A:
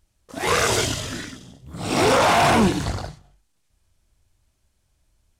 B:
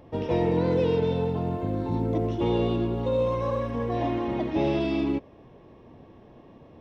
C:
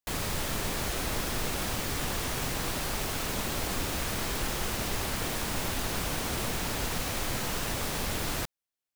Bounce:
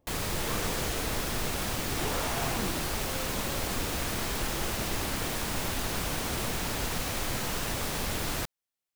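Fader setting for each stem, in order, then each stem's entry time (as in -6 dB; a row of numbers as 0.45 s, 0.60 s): -19.0 dB, -20.0 dB, 0.0 dB; 0.00 s, 0.00 s, 0.00 s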